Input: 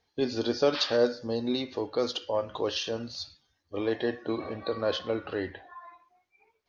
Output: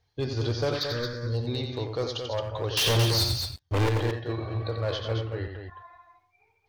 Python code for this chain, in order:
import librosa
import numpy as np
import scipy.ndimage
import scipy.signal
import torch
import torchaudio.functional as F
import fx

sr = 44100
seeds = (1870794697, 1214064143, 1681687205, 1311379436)

y = fx.low_shelf_res(x, sr, hz=160.0, db=9.0, q=3.0)
y = fx.leveller(y, sr, passes=5, at=(2.77, 3.89))
y = fx.level_steps(y, sr, step_db=16, at=(5.23, 5.68))
y = np.clip(10.0 ** (21.0 / 20.0) * y, -1.0, 1.0) / 10.0 ** (21.0 / 20.0)
y = fx.fixed_phaser(y, sr, hz=2800.0, stages=6, at=(0.76, 1.33), fade=0.02)
y = fx.echo_multitap(y, sr, ms=(89, 107, 222), db=(-6.5, -17.5, -6.5))
y = y * 10.0 ** (-1.5 / 20.0)